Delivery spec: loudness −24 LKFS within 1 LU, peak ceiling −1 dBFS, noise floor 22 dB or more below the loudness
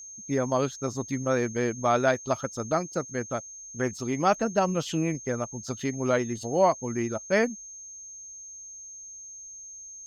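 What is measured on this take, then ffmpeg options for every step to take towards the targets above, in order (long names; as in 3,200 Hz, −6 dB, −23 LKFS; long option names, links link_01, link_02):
interfering tone 6,400 Hz; level of the tone −41 dBFS; integrated loudness −27.5 LKFS; sample peak −10.0 dBFS; target loudness −24.0 LKFS
→ -af "bandreject=frequency=6400:width=30"
-af "volume=3.5dB"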